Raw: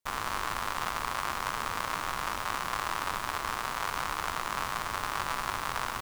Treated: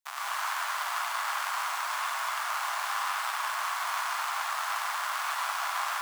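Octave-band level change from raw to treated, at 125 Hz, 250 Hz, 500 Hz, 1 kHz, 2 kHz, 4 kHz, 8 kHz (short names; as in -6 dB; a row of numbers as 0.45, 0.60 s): under -40 dB, under -40 dB, -5.0 dB, +1.5 dB, +2.5 dB, +2.0 dB, +2.5 dB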